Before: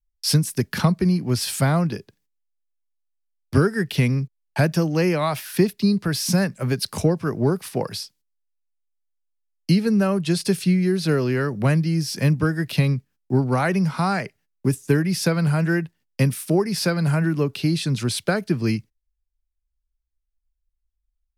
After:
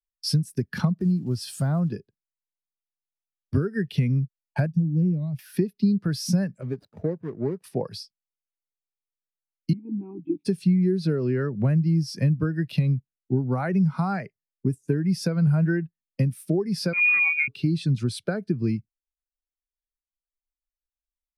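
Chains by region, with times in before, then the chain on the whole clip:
0:00.96–0:01.92: one scale factor per block 5 bits + notch filter 2,200 Hz, Q 6.1 + downward compressor 1.5 to 1, threshold −28 dBFS
0:04.66–0:05.39: drawn EQ curve 180 Hz 0 dB, 1,200 Hz −25 dB, 5,600 Hz −14 dB + highs frequency-modulated by the lows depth 0.21 ms
0:06.61–0:07.64: running median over 41 samples + low-shelf EQ 320 Hz −9.5 dB
0:09.73–0:10.45: linear-prediction vocoder at 8 kHz pitch kept + formant filter u + tilt shelving filter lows +5.5 dB, about 800 Hz
0:16.93–0:17.48: phase distortion by the signal itself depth 0.14 ms + voice inversion scrambler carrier 2,600 Hz
whole clip: downward compressor, threshold −21 dBFS; every bin expanded away from the loudest bin 1.5 to 1

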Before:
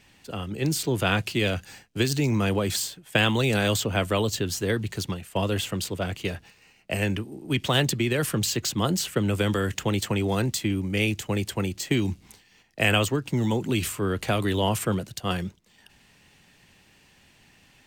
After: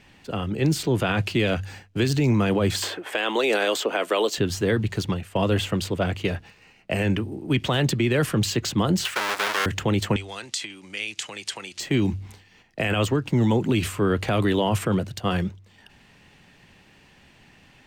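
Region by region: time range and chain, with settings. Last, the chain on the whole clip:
0:02.82–0:04.38: high-pass filter 330 Hz 24 dB per octave + multiband upward and downward compressor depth 70%
0:09.05–0:09.66: each half-wave held at its own peak + high-pass filter 1,100 Hz + leveller curve on the samples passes 1
0:10.16–0:11.80: downward compressor 8 to 1, threshold −33 dBFS + meter weighting curve ITU-R 468
whole clip: high-shelf EQ 5,000 Hz −12 dB; hum removal 48.44 Hz, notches 2; brickwall limiter −18 dBFS; level +5.5 dB

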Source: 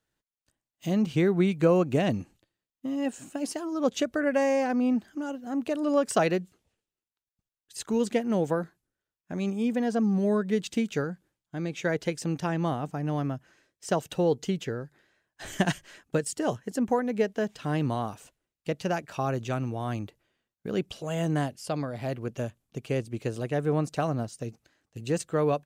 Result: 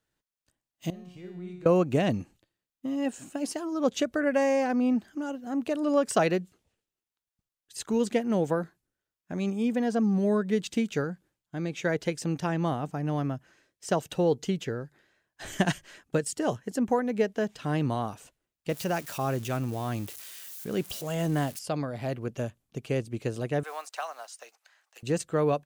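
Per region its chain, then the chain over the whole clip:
0:00.90–0:01.66: downward compressor 5 to 1, threshold −26 dBFS + tuned comb filter 180 Hz, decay 0.92 s, mix 90% + flutter between parallel walls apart 10 metres, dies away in 0.28 s
0:18.69–0:21.59: spike at every zero crossing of −33.5 dBFS + transient designer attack −2 dB, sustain +2 dB
0:23.63–0:25.03: one scale factor per block 7 bits + high-pass filter 770 Hz 24 dB per octave + multiband upward and downward compressor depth 40%
whole clip: no processing

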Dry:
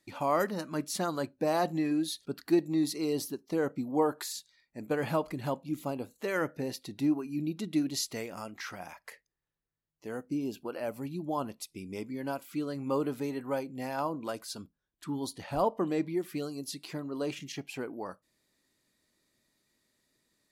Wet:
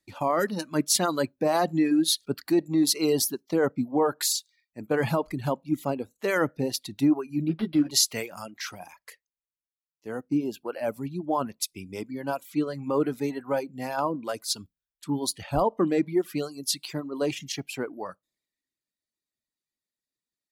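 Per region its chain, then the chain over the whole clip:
0:07.48–0:07.91: floating-point word with a short mantissa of 4 bits + double-tracking delay 13 ms −4 dB + linearly interpolated sample-rate reduction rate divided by 6×
whole clip: reverb reduction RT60 0.83 s; brickwall limiter −24 dBFS; multiband upward and downward expander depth 70%; level +8 dB

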